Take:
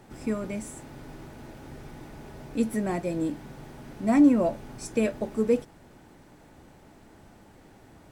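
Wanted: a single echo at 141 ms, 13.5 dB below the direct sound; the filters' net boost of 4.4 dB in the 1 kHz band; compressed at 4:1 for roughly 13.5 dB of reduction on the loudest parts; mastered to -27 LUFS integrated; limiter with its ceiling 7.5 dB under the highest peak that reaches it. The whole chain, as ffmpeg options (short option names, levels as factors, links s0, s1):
-af "equalizer=f=1000:t=o:g=6.5,acompressor=threshold=0.0316:ratio=4,alimiter=level_in=1.5:limit=0.0631:level=0:latency=1,volume=0.668,aecho=1:1:141:0.211,volume=3.76"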